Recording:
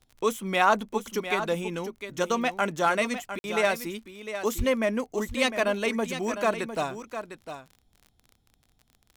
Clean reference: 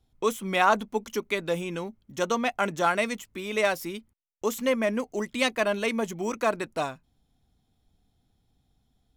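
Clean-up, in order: de-click; 4.57–4.69 s: high-pass 140 Hz 24 dB/octave; interpolate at 3.39 s, 51 ms; inverse comb 704 ms -10 dB

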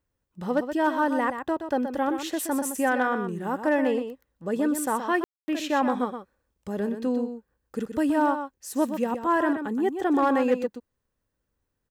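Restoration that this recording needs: clip repair -14 dBFS; room tone fill 5.24–5.48 s; inverse comb 124 ms -8.5 dB

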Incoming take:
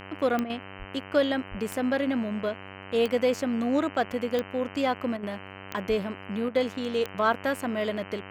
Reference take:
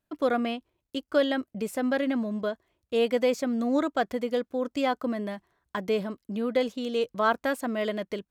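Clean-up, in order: de-click; de-hum 96.4 Hz, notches 32; 0.78–0.90 s: high-pass 140 Hz 24 dB/octave; 1.50–1.62 s: high-pass 140 Hz 24 dB/octave; 5.88–6.00 s: high-pass 140 Hz 24 dB/octave; interpolate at 0.44/5.17/6.49 s, 57 ms

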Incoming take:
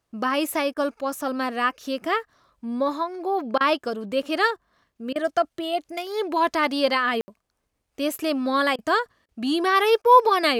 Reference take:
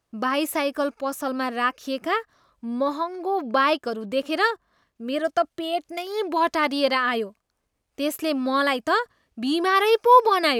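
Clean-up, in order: room tone fill 7.21–7.28 s; interpolate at 0.74/3.58/5.13/8.76/9.26/10.02 s, 25 ms

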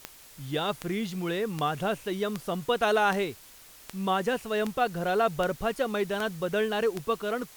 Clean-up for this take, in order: de-click; noise print and reduce 22 dB

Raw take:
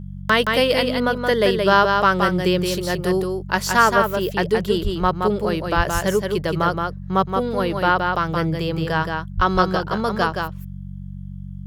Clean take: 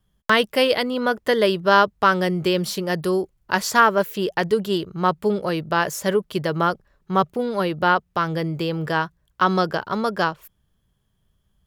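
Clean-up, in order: de-hum 47 Hz, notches 4; 4.83–4.95 s: high-pass 140 Hz 24 dB/octave; 5.76–5.88 s: high-pass 140 Hz 24 dB/octave; 9.36–9.48 s: high-pass 140 Hz 24 dB/octave; inverse comb 172 ms -4.5 dB

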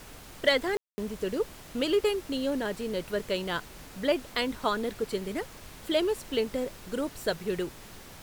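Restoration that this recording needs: clip repair -13 dBFS; room tone fill 0.77–0.98 s; noise print and reduce 27 dB

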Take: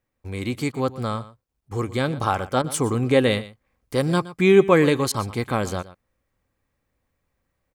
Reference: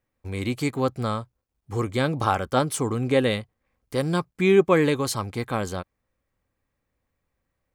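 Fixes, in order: interpolate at 0.72/1.69/2.62/5.12 s, 20 ms; inverse comb 119 ms -17 dB; trim 0 dB, from 2.74 s -3 dB

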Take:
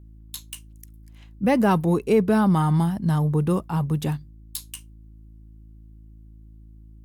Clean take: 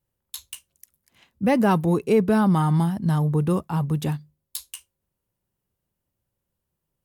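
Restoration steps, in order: de-hum 54.1 Hz, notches 6

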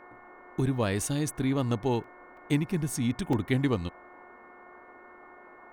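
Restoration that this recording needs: de-hum 360.3 Hz, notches 6; interpolate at 2.04/2.37/3.33 s, 3 ms; noise print and reduce 23 dB

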